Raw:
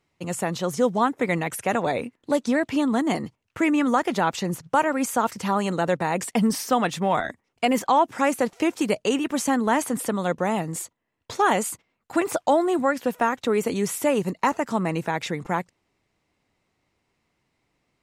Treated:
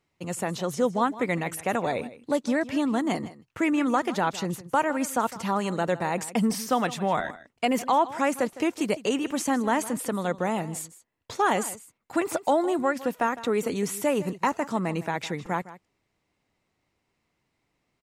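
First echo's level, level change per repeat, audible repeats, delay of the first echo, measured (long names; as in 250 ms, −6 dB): −16.5 dB, repeats not evenly spaced, 1, 158 ms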